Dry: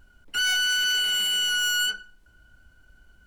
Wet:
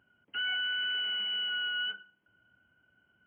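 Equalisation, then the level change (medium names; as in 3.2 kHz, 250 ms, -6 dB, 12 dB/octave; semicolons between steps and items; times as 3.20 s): high-pass 110 Hz 24 dB/octave; brick-wall FIR low-pass 3.3 kHz; -8.0 dB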